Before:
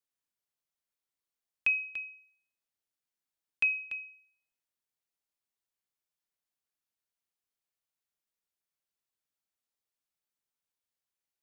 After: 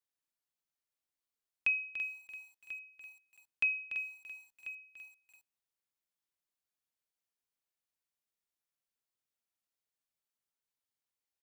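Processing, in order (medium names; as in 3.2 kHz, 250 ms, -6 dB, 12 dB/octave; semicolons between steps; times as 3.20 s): delay 1040 ms -14 dB; bit-crushed delay 336 ms, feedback 35%, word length 9-bit, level -10 dB; trim -3 dB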